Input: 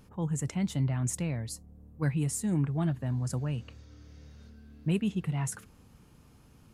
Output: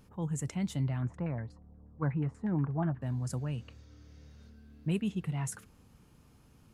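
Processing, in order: 1.02–3.02 s: LFO low-pass saw down 8.3 Hz 790–1800 Hz; trim -3 dB

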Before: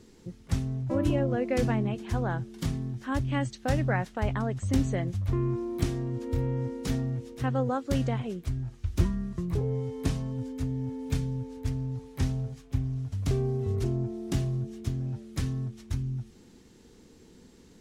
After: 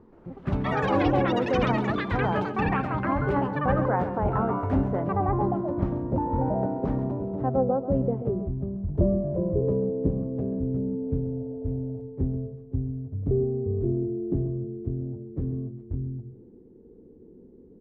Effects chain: low-pass sweep 1 kHz -> 420 Hz, 7.05–8.29 s; ever faster or slower copies 125 ms, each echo +7 st, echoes 3; hum notches 60/120 Hz; on a send: delay 134 ms -12 dB

